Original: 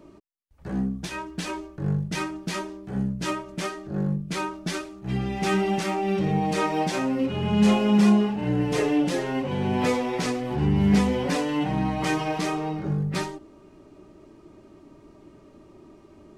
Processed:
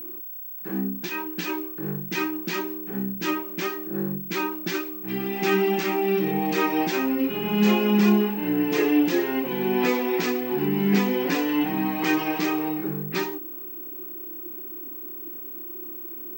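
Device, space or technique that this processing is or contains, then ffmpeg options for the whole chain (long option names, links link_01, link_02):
old television with a line whistle: -af "highpass=frequency=190:width=0.5412,highpass=frequency=190:width=1.3066,equalizer=frequency=350:width_type=q:width=4:gain=9,equalizer=frequency=590:width_type=q:width=4:gain=-8,equalizer=frequency=1700:width_type=q:width=4:gain=4,equalizer=frequency=2500:width_type=q:width=4:gain=5,lowpass=frequency=7100:width=0.5412,lowpass=frequency=7100:width=1.3066,aeval=exprs='val(0)+0.02*sin(2*PI*15734*n/s)':channel_layout=same"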